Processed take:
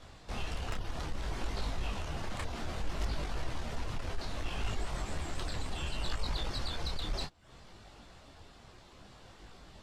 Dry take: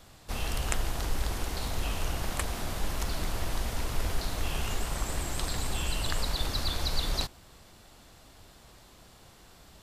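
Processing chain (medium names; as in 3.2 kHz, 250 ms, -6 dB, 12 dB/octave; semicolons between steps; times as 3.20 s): distance through air 51 m; reverb removal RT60 0.5 s; treble shelf 10 kHz -9.5 dB; in parallel at -0.5 dB: compression, threshold -37 dBFS, peak gain reduction 15 dB; on the sum: saturation -23.5 dBFS, distortion -15 dB; detune thickener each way 22 cents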